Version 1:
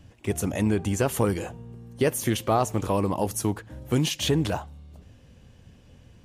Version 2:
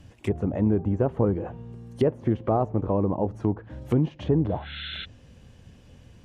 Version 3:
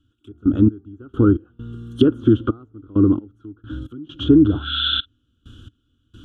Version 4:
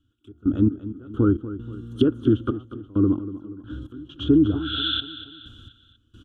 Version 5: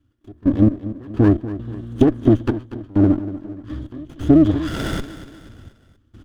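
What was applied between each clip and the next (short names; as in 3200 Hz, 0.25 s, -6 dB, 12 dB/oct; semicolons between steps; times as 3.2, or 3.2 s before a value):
spectral repair 4.52–5.02, 1300–4200 Hz before; treble ducked by the level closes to 740 Hz, closed at -23.5 dBFS; gain +1.5 dB
step gate "..x..x.xxxx" 66 bpm -24 dB; EQ curve 110 Hz 0 dB, 170 Hz -10 dB, 300 Hz +9 dB, 610 Hz -21 dB, 960 Hz -17 dB, 1400 Hz +13 dB, 2000 Hz -28 dB, 3300 Hz +12 dB, 4700 Hz -10 dB, 6800 Hz -5 dB; gain +8.5 dB
feedback echo 0.24 s, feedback 47%, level -14 dB; gain -4.5 dB
running maximum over 17 samples; gain +5 dB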